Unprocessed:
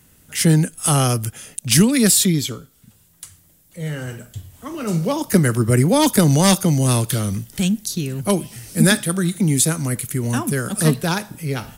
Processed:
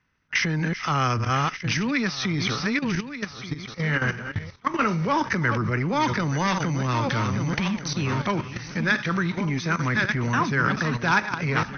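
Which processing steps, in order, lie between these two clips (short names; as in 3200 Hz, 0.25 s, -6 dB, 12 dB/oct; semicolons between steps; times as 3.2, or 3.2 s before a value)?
regenerating reverse delay 0.591 s, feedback 47%, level -11 dB; gate with hold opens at -26 dBFS; in parallel at -2.5 dB: compressor 16:1, threshold -23 dBFS, peak gain reduction 15.5 dB; on the sum: limiter -7 dBFS, peak gain reduction 5.5 dB; level quantiser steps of 12 dB; soft clip -15.5 dBFS, distortion -24 dB; brick-wall FIR low-pass 6300 Hz; band shelf 1500 Hz +11 dB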